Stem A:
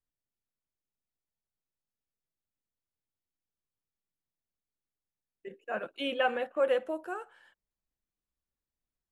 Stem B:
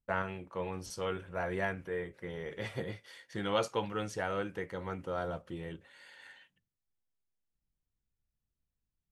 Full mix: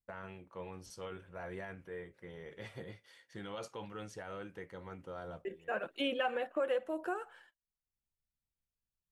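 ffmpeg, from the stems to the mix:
ffmpeg -i stem1.wav -i stem2.wav -filter_complex "[0:a]agate=range=-24dB:threshold=-59dB:ratio=16:detection=peak,aphaser=in_gain=1:out_gain=1:delay=3.1:decay=0.32:speed=0.99:type=sinusoidal,volume=2dB,asplit=2[link_01][link_02];[1:a]alimiter=level_in=1.5dB:limit=-24dB:level=0:latency=1:release=28,volume=-1.5dB,volume=-8dB[link_03];[link_02]apad=whole_len=401952[link_04];[link_03][link_04]sidechaincompress=threshold=-60dB:ratio=3:attack=42:release=442[link_05];[link_01][link_05]amix=inputs=2:normalize=0,acompressor=threshold=-34dB:ratio=2.5" out.wav

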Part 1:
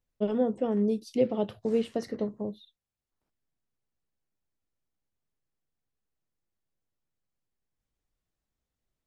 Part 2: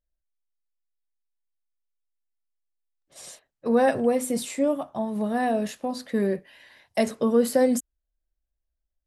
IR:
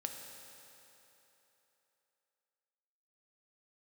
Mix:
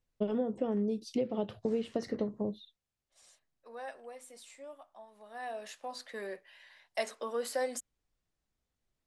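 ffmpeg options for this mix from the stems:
-filter_complex "[0:a]acompressor=threshold=-29dB:ratio=10,volume=1dB[link_01];[1:a]highpass=720,volume=-5.5dB,afade=type=in:start_time=5.24:duration=0.66:silence=0.251189[link_02];[link_01][link_02]amix=inputs=2:normalize=0,lowpass=9000"

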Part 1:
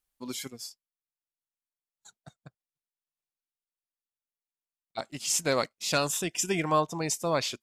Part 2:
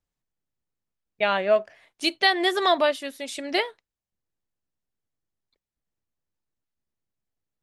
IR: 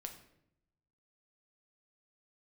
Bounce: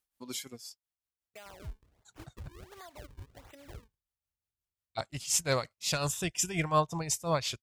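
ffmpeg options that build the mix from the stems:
-filter_complex "[0:a]tremolo=f=5.6:d=0.69,volume=0.5dB,asplit=2[link_01][link_02];[1:a]alimiter=limit=-12.5dB:level=0:latency=1:release=252,acrossover=split=160|2000|7100[link_03][link_04][link_05][link_06];[link_03]acompressor=threshold=-58dB:ratio=4[link_07];[link_04]acompressor=threshold=-33dB:ratio=4[link_08];[link_05]acompressor=threshold=-42dB:ratio=4[link_09];[link_06]acompressor=threshold=-56dB:ratio=4[link_10];[link_07][link_08][link_09][link_10]amix=inputs=4:normalize=0,acrusher=samples=38:mix=1:aa=0.000001:lfo=1:lforange=60.8:lforate=1.4,adelay=150,volume=-15dB[link_11];[link_02]apad=whole_len=342949[link_12];[link_11][link_12]sidechaincompress=threshold=-47dB:ratio=4:attack=9.5:release=1130[link_13];[link_01][link_13]amix=inputs=2:normalize=0,highpass=47,asubboost=boost=11.5:cutoff=78"

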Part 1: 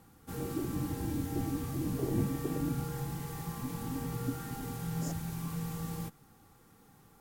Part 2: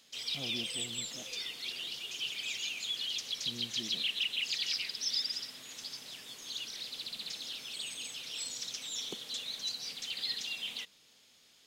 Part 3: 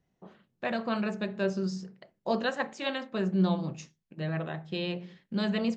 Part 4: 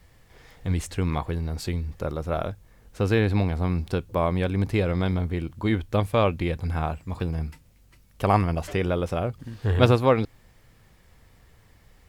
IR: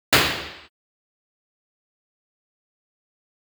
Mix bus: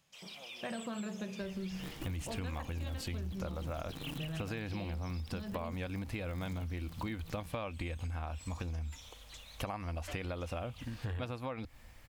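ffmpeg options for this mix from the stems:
-filter_complex "[0:a]acrusher=bits=6:dc=4:mix=0:aa=0.000001,adelay=1450,volume=-12dB[link_01];[1:a]equalizer=frequency=125:width_type=o:width=1:gain=-10,equalizer=frequency=250:width_type=o:width=1:gain=-11,equalizer=frequency=500:width_type=o:width=1:gain=7,equalizer=frequency=1000:width_type=o:width=1:gain=7,equalizer=frequency=4000:width_type=o:width=1:gain=-8,volume=-9dB[link_02];[2:a]volume=-7dB[link_03];[3:a]equalizer=frequency=76:width=1.7:gain=6,adelay=1400,volume=0dB[link_04];[link_01][link_03]amix=inputs=2:normalize=0,equalizer=frequency=140:width_type=o:width=1.4:gain=6.5,acompressor=threshold=-33dB:ratio=6,volume=0dB[link_05];[link_02][link_04]amix=inputs=2:normalize=0,equalizer=frequency=100:width_type=o:width=0.33:gain=-10,equalizer=frequency=160:width_type=o:width=0.33:gain=-11,equalizer=frequency=400:width_type=o:width=0.33:gain=-12,equalizer=frequency=2500:width_type=o:width=0.33:gain=4,acompressor=threshold=-27dB:ratio=3,volume=0dB[link_06];[link_05][link_06]amix=inputs=2:normalize=0,acompressor=threshold=-36dB:ratio=6"

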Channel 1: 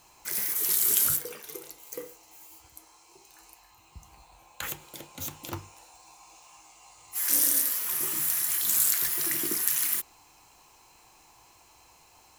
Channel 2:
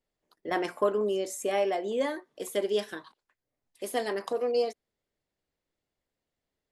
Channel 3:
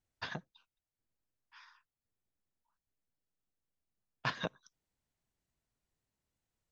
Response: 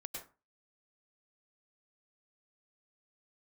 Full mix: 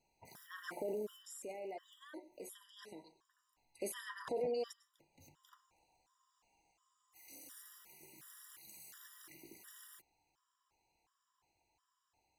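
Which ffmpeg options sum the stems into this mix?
-filter_complex "[0:a]highshelf=frequency=7400:gain=-10.5,asoftclip=type=tanh:threshold=-26dB,volume=-19.5dB[link_01];[1:a]alimiter=level_in=7.5dB:limit=-24dB:level=0:latency=1:release=29,volume=-7.5dB,volume=7.5dB,afade=type=out:start_time=0.85:duration=0.37:silence=0.421697,afade=type=in:start_time=3.34:duration=0.29:silence=0.375837,asplit=3[link_02][link_03][link_04];[link_03]volume=-9.5dB[link_05];[2:a]lowpass=frequency=1700:width=0.5412,lowpass=frequency=1700:width=1.3066,asoftclip=type=hard:threshold=-22.5dB,volume=-11.5dB[link_06];[link_04]apad=whole_len=546165[link_07];[link_01][link_07]sidechaincompress=threshold=-47dB:ratio=8:attack=40:release=743[link_08];[3:a]atrim=start_sample=2205[link_09];[link_05][link_09]afir=irnorm=-1:irlink=0[link_10];[link_08][link_02][link_06][link_10]amix=inputs=4:normalize=0,afftfilt=real='re*gt(sin(2*PI*1.4*pts/sr)*(1-2*mod(floor(b*sr/1024/970),2)),0)':imag='im*gt(sin(2*PI*1.4*pts/sr)*(1-2*mod(floor(b*sr/1024/970),2)),0)':win_size=1024:overlap=0.75"

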